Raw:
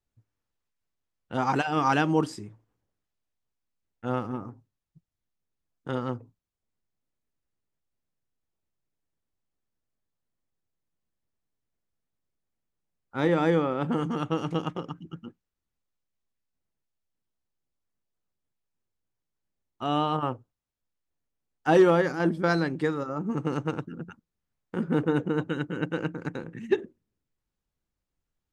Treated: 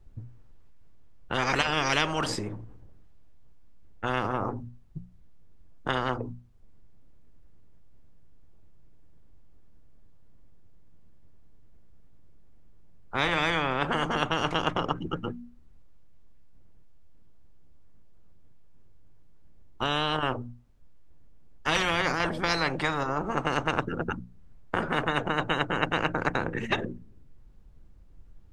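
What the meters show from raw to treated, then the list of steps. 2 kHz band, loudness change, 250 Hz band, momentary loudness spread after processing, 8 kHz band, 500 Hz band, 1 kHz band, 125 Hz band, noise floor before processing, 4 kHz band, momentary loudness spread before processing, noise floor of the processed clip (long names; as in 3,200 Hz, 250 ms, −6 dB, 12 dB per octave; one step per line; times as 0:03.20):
+6.0 dB, −1.0 dB, −5.5 dB, 14 LU, can't be measured, −4.5 dB, +1.5 dB, −2.5 dB, below −85 dBFS, +10.0 dB, 17 LU, −51 dBFS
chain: spectral tilt −3.5 dB per octave
mains-hum notches 60/120/180/240 Hz
every bin compressed towards the loudest bin 10 to 1
level −4 dB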